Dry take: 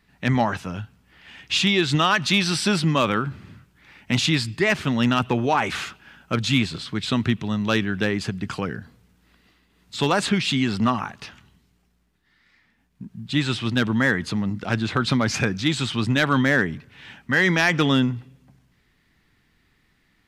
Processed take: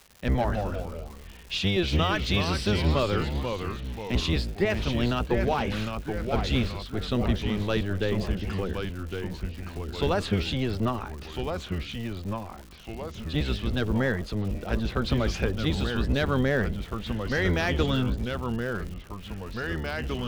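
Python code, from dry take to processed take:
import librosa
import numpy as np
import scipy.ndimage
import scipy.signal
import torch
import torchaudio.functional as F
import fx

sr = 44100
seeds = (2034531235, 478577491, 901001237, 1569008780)

y = fx.octave_divider(x, sr, octaves=1, level_db=3.0)
y = fx.echo_pitch(y, sr, ms=128, semitones=-2, count=3, db_per_echo=-6.0)
y = fx.graphic_eq_10(y, sr, hz=(125, 500, 1000, 2000, 8000), db=(-7, 4, -4, -5, -11))
y = fx.dmg_crackle(y, sr, seeds[0], per_s=250.0, level_db=-33.0)
y = fx.peak_eq(y, sr, hz=290.0, db=-5.0, octaves=0.34)
y = y * librosa.db_to_amplitude(-4.5)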